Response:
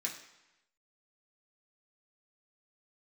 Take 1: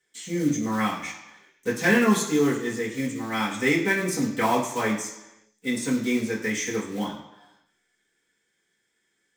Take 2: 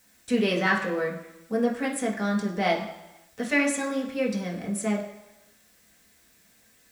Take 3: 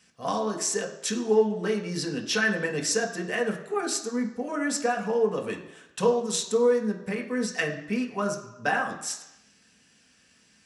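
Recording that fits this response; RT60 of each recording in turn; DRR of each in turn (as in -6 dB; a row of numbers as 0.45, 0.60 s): 2; 0.95, 0.95, 0.95 s; -7.5, -3.5, 1.0 dB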